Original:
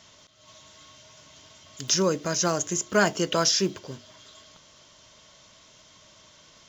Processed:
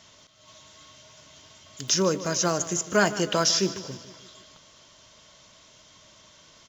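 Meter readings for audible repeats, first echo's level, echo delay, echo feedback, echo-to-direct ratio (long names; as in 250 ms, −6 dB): 4, −15.0 dB, 152 ms, 54%, −13.5 dB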